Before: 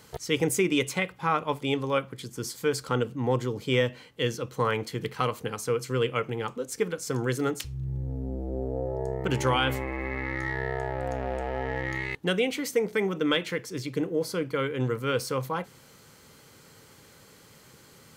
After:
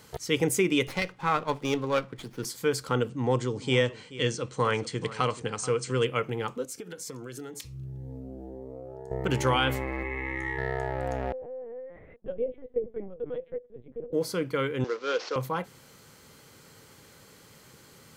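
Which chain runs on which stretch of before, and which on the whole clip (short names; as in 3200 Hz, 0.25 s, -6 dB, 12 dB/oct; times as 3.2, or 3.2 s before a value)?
0.87–2.45 BPF 110–6700 Hz + running maximum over 5 samples
3.09–6.05 brick-wall FIR low-pass 9300 Hz + high shelf 6700 Hz +7.5 dB + echo 0.431 s -16.5 dB
6.65–9.11 HPF 180 Hz 6 dB/oct + compressor 16:1, threshold -34 dBFS + cascading phaser rising 1.9 Hz
10.03–10.58 LPF 8100 Hz + high shelf 5300 Hz +7.5 dB + fixed phaser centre 960 Hz, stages 8
11.32–14.13 double band-pass 340 Hz, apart 1.1 oct + LPC vocoder at 8 kHz pitch kept
14.84–15.36 CVSD 32 kbps + HPF 340 Hz 24 dB/oct
whole clip: dry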